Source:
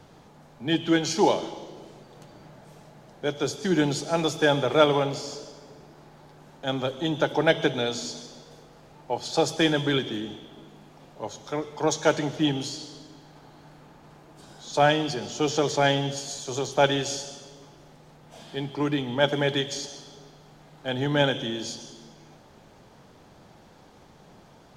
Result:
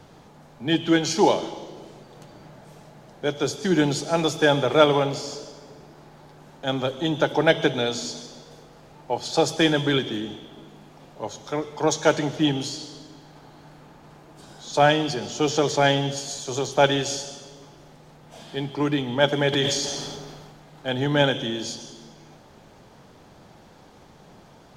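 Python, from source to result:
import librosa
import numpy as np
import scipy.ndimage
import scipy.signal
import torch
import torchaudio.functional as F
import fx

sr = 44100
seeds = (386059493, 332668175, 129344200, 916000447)

y = fx.sustainer(x, sr, db_per_s=28.0, at=(19.52, 20.91), fade=0.02)
y = F.gain(torch.from_numpy(y), 2.5).numpy()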